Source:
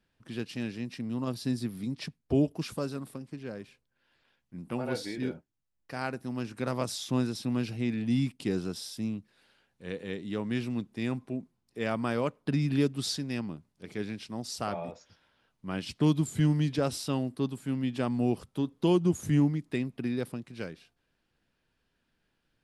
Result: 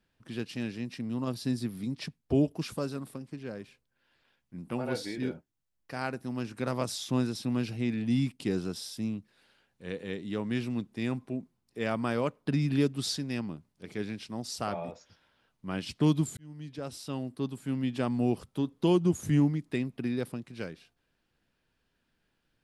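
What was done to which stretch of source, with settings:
16.37–17.80 s: fade in

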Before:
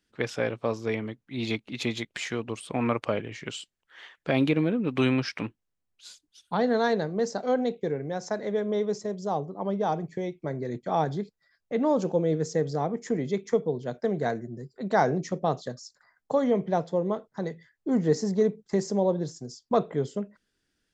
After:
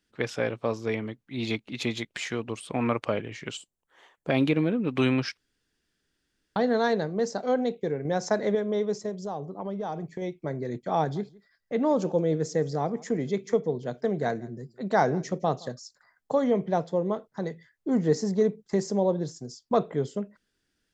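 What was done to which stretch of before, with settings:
3.57–4.30 s: high-order bell 2.7 kHz -11 dB 2.3 oct
5.37–6.56 s: room tone
8.05–8.55 s: gain +5 dB
9.09–10.22 s: compression 3:1, threshold -30 dBFS
10.99–15.74 s: delay 166 ms -23 dB

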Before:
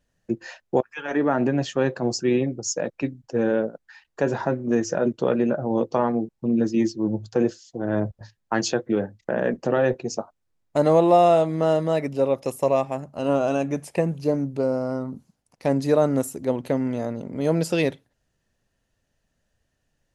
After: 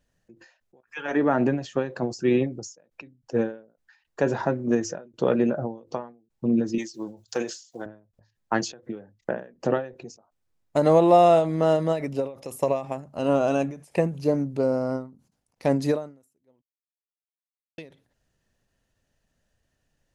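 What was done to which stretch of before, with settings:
6.78–7.86 s: tilt EQ +4.5 dB/octave
16.62–17.78 s: mute
whole clip: endings held to a fixed fall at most 140 dB/s

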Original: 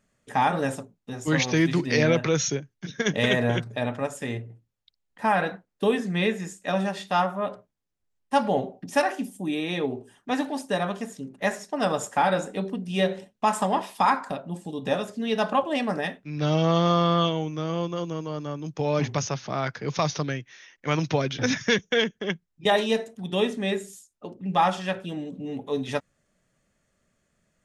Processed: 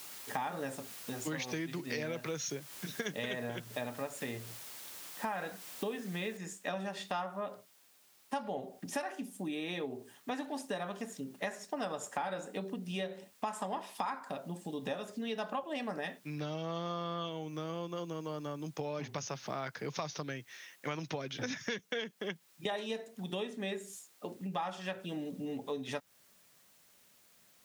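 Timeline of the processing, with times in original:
6.37 s: noise floor step -46 dB -63 dB
whole clip: compression 6:1, threshold -32 dBFS; high-pass 190 Hz 6 dB/octave; trim -2 dB

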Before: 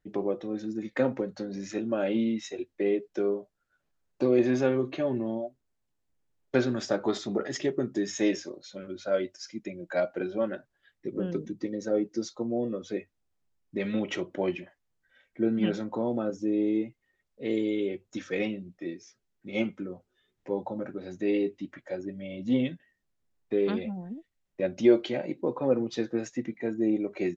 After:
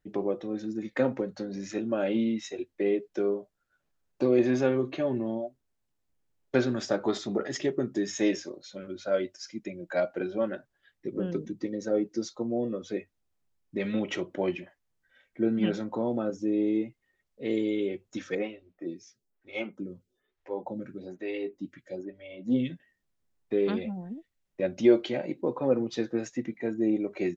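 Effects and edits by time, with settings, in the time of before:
18.35–22.70 s: lamp-driven phase shifter 1.1 Hz

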